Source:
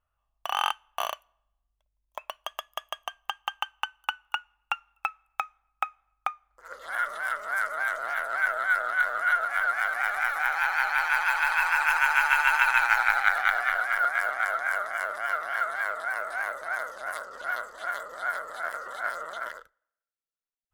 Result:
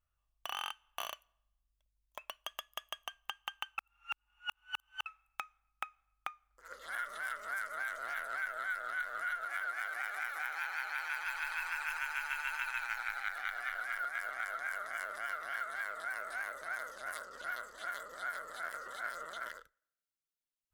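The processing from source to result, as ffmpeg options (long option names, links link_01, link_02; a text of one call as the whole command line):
ffmpeg -i in.wav -filter_complex "[0:a]asettb=1/sr,asplit=3[link_01][link_02][link_03];[link_01]atrim=end=9.454[link_04];[link_02]atrim=start=9.45:end=11.24,asetpts=PTS-STARTPTS,afade=type=in:duration=0.004:curve=qsin,afade=type=out:start_time=1.786:duration=0.004:curve=qsin,lowshelf=frequency=230:width_type=q:width=1.5:gain=-11[link_05];[link_03]atrim=start=11.236[link_06];[link_04][link_05]acrossfade=duration=0.004:curve1=hsin:curve2=qsin[link_07];[link_07][link_06]acrossfade=duration=0.004:curve1=qsin:curve2=hsin,asplit=3[link_08][link_09][link_10];[link_08]atrim=end=3.782[link_11];[link_09]atrim=start=3.778:end=5.062,asetpts=PTS-STARTPTS,areverse[link_12];[link_10]atrim=start=5.058[link_13];[link_11][link_12]acrossfade=duration=0.004:curve1=hsin:curve2=hsin[link_14];[link_14][link_13]acrossfade=duration=0.004:curve1=hsin:curve2=hsin,equalizer=frequency=810:width=0.83:gain=-9,acompressor=threshold=-33dB:ratio=4,volume=-2.5dB" out.wav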